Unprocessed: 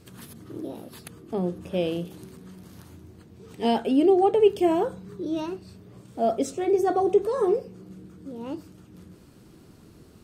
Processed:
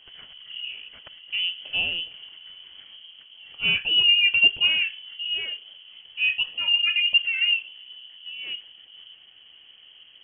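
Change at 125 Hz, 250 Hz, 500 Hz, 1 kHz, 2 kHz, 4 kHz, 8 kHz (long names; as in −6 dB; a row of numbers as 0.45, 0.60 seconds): −12.0 dB, below −25 dB, −28.5 dB, below −20 dB, +22.5 dB, +23.0 dB, below −35 dB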